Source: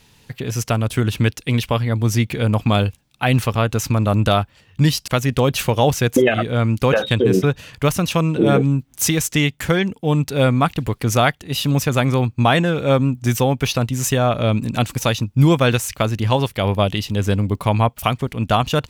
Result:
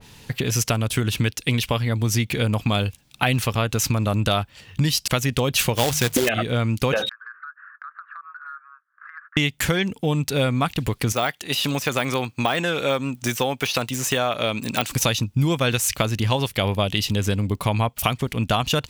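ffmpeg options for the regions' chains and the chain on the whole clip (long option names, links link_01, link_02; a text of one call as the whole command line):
ffmpeg -i in.wav -filter_complex "[0:a]asettb=1/sr,asplit=3[link_01][link_02][link_03];[link_01]atrim=end=5.754[link_04];[link_02]atrim=start=5.75:end=6.29,asetpts=PTS-STARTPTS,afade=type=in:duration=0.004:curve=qsin,afade=type=out:start_time=0.536:duration=0.004:curve=qsin,bandreject=frequency=50:width_type=h:width=6,bandreject=frequency=100:width_type=h:width=6,bandreject=frequency=150:width_type=h:width=6,acrusher=bits=2:mode=log:mix=0:aa=0.000001[link_05];[link_03]atrim=start=6.286[link_06];[link_04][link_05]acrossfade=duration=0.004:curve1=hsin:curve2=qsin[link_07];[link_07][link_06]acrossfade=duration=0.004:curve1=qsin:curve2=hsin,asettb=1/sr,asplit=3[link_08][link_09][link_10];[link_08]atrim=end=7.094[link_11];[link_09]atrim=start=7.09:end=9.37,asetpts=PTS-STARTPTS,afade=type=in:duration=0.004:curve=qsin,afade=type=out:start_time=2.276:duration=0.004:curve=qsin,asuperpass=centerf=1400:order=8:qfactor=2.6,acompressor=threshold=-41dB:ratio=8:attack=3.2:release=140:knee=1:detection=peak[link_12];[link_10]atrim=start=9.366[link_13];[link_11][link_12]acrossfade=duration=0.004:curve1=hsin:curve2=qsin[link_14];[link_14][link_13]acrossfade=duration=0.004:curve1=qsin:curve2=hsin,asettb=1/sr,asplit=3[link_15][link_16][link_17];[link_15]atrim=end=11.124[link_18];[link_16]atrim=start=11.12:end=14.91,asetpts=PTS-STARTPTS,afade=type=in:duration=0.004:curve=qsin,afade=type=out:start_time=3.786:duration=0.004:curve=qsin,deesser=0.65,highpass=frequency=540:poles=1[link_19];[link_17]atrim=start=14.906[link_20];[link_18][link_19]acrossfade=duration=0.004:curve1=hsin:curve2=qsin[link_21];[link_21][link_20]acrossfade=duration=0.004:curve1=qsin:curve2=hsin,acompressor=threshold=-28dB:ratio=3,adynamicequalizer=threshold=0.00631:dfrequency=1900:dqfactor=0.7:tfrequency=1900:tqfactor=0.7:attack=5:release=100:ratio=0.375:range=3:mode=boostabove:tftype=highshelf,volume=6dB" out.wav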